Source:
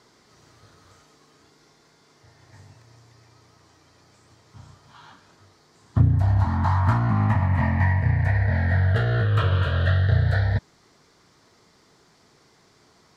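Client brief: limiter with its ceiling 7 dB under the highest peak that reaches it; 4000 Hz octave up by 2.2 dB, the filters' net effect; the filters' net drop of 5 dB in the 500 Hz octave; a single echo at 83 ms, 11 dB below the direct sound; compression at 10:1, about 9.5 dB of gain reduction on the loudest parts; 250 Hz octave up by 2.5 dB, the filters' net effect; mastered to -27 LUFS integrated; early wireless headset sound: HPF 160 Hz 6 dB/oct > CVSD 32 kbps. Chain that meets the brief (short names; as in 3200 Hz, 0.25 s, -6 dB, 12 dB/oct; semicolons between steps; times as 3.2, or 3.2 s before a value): bell 250 Hz +7.5 dB; bell 500 Hz -8 dB; bell 4000 Hz +3 dB; compressor 10:1, threshold -21 dBFS; limiter -19 dBFS; HPF 160 Hz 6 dB/oct; echo 83 ms -11 dB; CVSD 32 kbps; gain +5 dB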